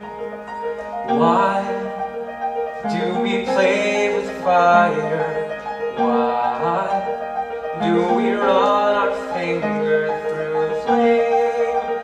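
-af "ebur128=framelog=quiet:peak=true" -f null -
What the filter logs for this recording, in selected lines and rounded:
Integrated loudness:
  I:         -19.3 LUFS
  Threshold: -29.4 LUFS
Loudness range:
  LRA:         2.8 LU
  Threshold: -39.3 LUFS
  LRA low:   -21.2 LUFS
  LRA high:  -18.4 LUFS
True peak:
  Peak:       -2.3 dBFS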